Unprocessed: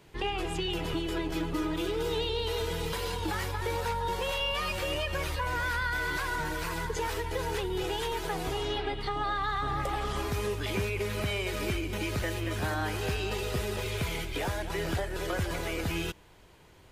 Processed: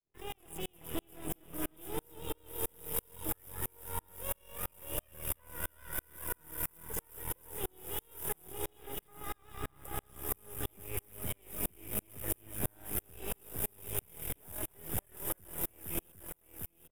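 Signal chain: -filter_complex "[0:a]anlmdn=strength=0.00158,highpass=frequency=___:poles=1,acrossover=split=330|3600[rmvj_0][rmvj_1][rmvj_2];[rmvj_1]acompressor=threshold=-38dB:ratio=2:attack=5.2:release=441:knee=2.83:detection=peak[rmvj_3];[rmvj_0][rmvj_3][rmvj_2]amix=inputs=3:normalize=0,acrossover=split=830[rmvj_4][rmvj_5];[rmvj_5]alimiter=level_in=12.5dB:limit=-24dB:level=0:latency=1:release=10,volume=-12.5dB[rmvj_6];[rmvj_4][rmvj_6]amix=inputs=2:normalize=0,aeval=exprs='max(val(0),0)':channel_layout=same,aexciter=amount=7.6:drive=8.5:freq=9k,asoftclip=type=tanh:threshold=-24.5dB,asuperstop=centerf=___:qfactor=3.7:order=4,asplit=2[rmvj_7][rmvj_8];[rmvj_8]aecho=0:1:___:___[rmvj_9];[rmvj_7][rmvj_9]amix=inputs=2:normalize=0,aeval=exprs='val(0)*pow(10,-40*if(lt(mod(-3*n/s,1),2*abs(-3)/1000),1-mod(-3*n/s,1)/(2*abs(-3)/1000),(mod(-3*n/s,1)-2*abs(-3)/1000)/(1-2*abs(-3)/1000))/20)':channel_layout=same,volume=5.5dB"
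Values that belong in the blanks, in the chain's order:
67, 4300, 753, 0.376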